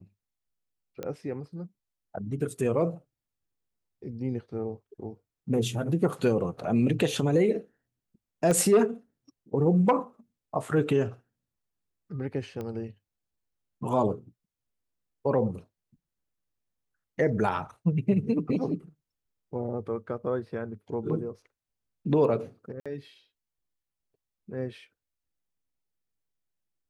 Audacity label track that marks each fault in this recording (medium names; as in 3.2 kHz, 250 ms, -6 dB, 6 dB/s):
1.030000	1.030000	pop -21 dBFS
8.510000	8.510000	pop -15 dBFS
12.610000	12.610000	pop -24 dBFS
22.800000	22.860000	dropout 56 ms